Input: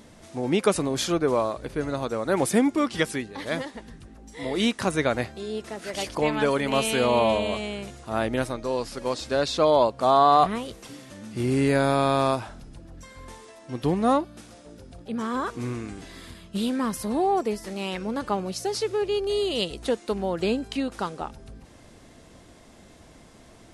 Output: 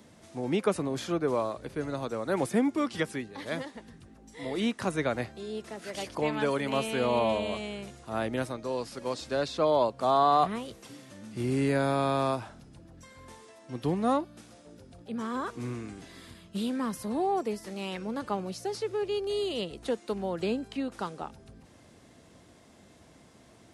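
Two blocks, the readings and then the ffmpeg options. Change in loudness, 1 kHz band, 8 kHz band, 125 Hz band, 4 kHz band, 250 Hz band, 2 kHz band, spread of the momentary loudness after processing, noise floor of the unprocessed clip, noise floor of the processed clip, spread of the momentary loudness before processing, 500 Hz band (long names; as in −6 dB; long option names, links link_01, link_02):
−5.5 dB, −5.5 dB, −9.5 dB, −4.5 dB, −7.5 dB, −5.0 dB, −6.0 dB, 16 LU, −51 dBFS, −57 dBFS, 17 LU, −5.5 dB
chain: -filter_complex "[0:a]highpass=88,lowshelf=frequency=130:gain=3.5,acrossover=split=240|610|2500[link_01][link_02][link_03][link_04];[link_04]alimiter=level_in=2dB:limit=-24dB:level=0:latency=1:release=317,volume=-2dB[link_05];[link_01][link_02][link_03][link_05]amix=inputs=4:normalize=0,volume=-5.5dB"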